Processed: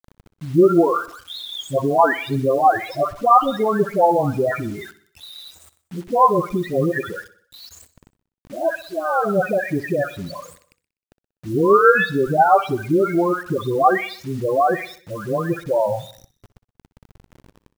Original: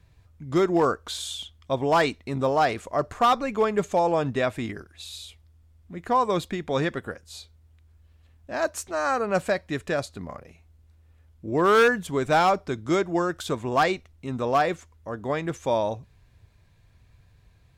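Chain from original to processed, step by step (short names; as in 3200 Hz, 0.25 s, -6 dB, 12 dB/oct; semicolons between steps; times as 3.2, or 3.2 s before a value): spectral delay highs late, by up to 0.476 s; in parallel at 0 dB: level quantiser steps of 10 dB; on the sum: loudest bins only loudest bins 8; bit-crush 8-bit; feedback echo 62 ms, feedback 52%, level -17 dB; gain +4 dB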